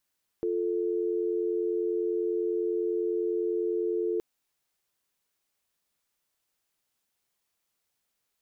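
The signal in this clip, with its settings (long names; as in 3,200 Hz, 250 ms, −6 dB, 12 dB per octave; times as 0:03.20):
call progress tone dial tone, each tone −28.5 dBFS 3.77 s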